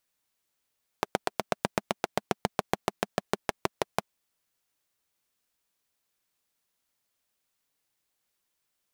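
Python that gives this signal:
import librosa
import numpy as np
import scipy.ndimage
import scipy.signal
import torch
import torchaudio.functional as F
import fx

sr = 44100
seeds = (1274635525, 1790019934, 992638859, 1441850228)

y = fx.engine_single_rev(sr, seeds[0], length_s=3.01, rpm=1000, resonances_hz=(210.0, 400.0, 640.0), end_rpm=700)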